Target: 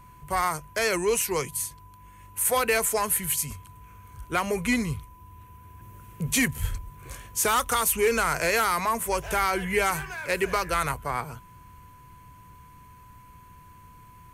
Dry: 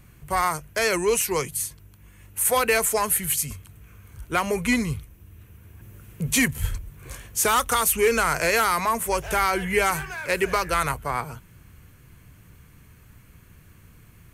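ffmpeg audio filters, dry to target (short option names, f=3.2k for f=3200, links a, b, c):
-af "aeval=exprs='val(0)+0.00398*sin(2*PI*1000*n/s)':c=same,acontrast=45,volume=-8dB"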